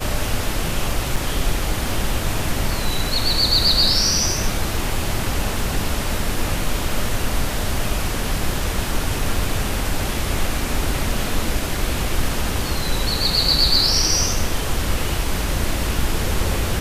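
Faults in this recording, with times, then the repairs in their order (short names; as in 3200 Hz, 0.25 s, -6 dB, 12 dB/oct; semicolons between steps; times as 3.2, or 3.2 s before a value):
1.16 gap 4.7 ms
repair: interpolate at 1.16, 4.7 ms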